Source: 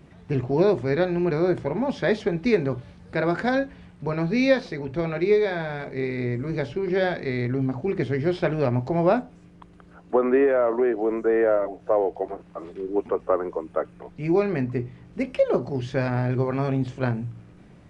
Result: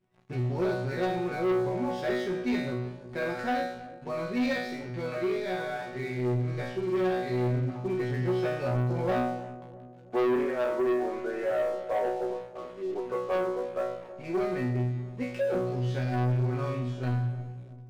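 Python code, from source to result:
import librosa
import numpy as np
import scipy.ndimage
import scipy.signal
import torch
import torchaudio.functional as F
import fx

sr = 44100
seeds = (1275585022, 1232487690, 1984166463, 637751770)

y = fx.resonator_bank(x, sr, root=47, chord='fifth', decay_s=0.67)
y = fx.leveller(y, sr, passes=3)
y = fx.echo_filtered(y, sr, ms=325, feedback_pct=58, hz=830.0, wet_db=-14.0)
y = F.gain(torch.from_numpy(y), 1.0).numpy()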